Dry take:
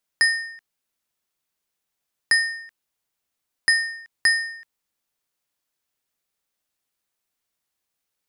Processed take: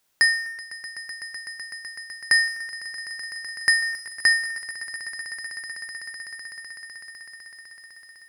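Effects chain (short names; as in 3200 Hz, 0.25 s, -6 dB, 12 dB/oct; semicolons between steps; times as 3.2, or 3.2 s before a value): G.711 law mismatch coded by mu; on a send: swelling echo 0.126 s, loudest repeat 8, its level -17 dB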